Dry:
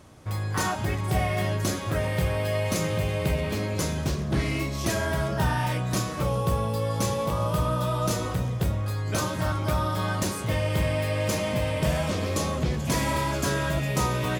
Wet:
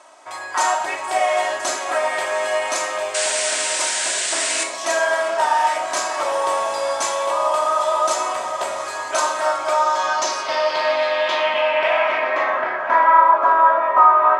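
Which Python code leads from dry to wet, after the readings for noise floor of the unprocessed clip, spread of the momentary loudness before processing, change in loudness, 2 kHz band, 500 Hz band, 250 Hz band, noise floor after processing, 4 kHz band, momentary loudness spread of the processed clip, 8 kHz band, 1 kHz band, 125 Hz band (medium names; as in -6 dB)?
-31 dBFS, 2 LU, +8.0 dB, +10.5 dB, +8.0 dB, -11.5 dB, -29 dBFS, +8.5 dB, 9 LU, +10.5 dB, +15.0 dB, under -30 dB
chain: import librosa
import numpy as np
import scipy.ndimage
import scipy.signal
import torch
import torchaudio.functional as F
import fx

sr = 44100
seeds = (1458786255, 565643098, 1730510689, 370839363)

p1 = x + 0.59 * np.pad(x, (int(3.1 * sr / 1000.0), 0))[:len(x)]
p2 = p1 + fx.echo_diffused(p1, sr, ms=780, feedback_pct=63, wet_db=-12, dry=0)
p3 = fx.spec_paint(p2, sr, seeds[0], shape='noise', start_s=3.14, length_s=1.5, low_hz=1400.0, high_hz=10000.0, level_db=-27.0)
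p4 = scipy.signal.sosfilt(scipy.signal.cheby1(3, 1.0, 770.0, 'highpass', fs=sr, output='sos'), p3)
p5 = fx.rev_schroeder(p4, sr, rt60_s=0.48, comb_ms=27, drr_db=7.0)
p6 = fx.rider(p5, sr, range_db=5, speed_s=0.5)
p7 = p5 + (p6 * 10.0 ** (-1.5 / 20.0))
p8 = fx.tilt_eq(p7, sr, slope=-4.0)
p9 = fx.filter_sweep_lowpass(p8, sr, from_hz=8200.0, to_hz=1200.0, start_s=9.61, end_s=13.34, q=3.3)
y = p9 * 10.0 ** (4.5 / 20.0)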